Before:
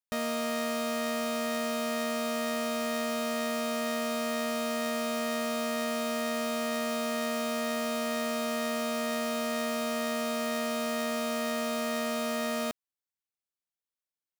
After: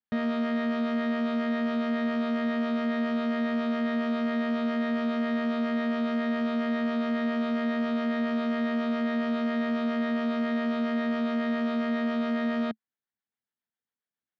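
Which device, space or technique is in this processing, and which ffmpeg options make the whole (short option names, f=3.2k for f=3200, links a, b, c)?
guitar amplifier with harmonic tremolo: -filter_complex "[0:a]acrossover=split=450[a][b];[a]aeval=exprs='val(0)*(1-0.5/2+0.5/2*cos(2*PI*7.3*n/s))':c=same[c];[b]aeval=exprs='val(0)*(1-0.5/2-0.5/2*cos(2*PI*7.3*n/s))':c=same[d];[c][d]amix=inputs=2:normalize=0,asoftclip=type=tanh:threshold=-27.5dB,highpass=75,equalizer=f=220:t=q:w=4:g=8,equalizer=f=570:t=q:w=4:g=-4,equalizer=f=1.1k:t=q:w=4:g=-4,equalizer=f=1.7k:t=q:w=4:g=4,equalizer=f=2.6k:t=q:w=4:g=-8,lowpass=f=3.4k:w=0.5412,lowpass=f=3.4k:w=1.3066,volume=5dB"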